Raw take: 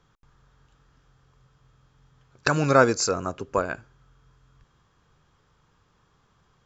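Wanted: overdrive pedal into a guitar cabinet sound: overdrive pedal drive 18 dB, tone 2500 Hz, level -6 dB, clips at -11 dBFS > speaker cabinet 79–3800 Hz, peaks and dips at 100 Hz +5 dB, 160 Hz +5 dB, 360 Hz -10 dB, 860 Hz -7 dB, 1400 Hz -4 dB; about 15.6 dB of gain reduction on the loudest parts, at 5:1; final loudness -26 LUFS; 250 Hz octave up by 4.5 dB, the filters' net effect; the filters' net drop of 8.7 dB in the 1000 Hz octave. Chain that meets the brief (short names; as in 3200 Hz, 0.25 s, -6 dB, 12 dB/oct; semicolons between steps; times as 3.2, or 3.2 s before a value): bell 250 Hz +7.5 dB; bell 1000 Hz -8 dB; compressor 5:1, threshold -30 dBFS; overdrive pedal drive 18 dB, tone 2500 Hz, level -6 dB, clips at -11 dBFS; speaker cabinet 79–3800 Hz, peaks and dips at 100 Hz +5 dB, 160 Hz +5 dB, 360 Hz -10 dB, 860 Hz -7 dB, 1400 Hz -4 dB; gain +6 dB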